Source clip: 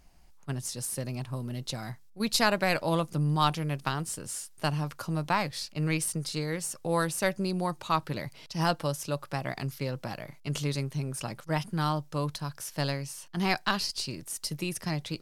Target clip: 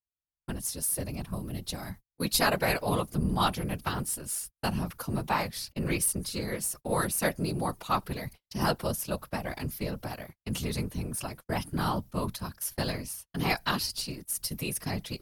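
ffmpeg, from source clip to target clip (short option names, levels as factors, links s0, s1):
-af "afftfilt=real='hypot(re,im)*cos(2*PI*random(0))':imag='hypot(re,im)*sin(2*PI*random(1))':win_size=512:overlap=0.75,agate=range=0.00501:threshold=0.00398:ratio=16:detection=peak,aexciter=amount=4:drive=3.3:freq=9900,volume=1.78"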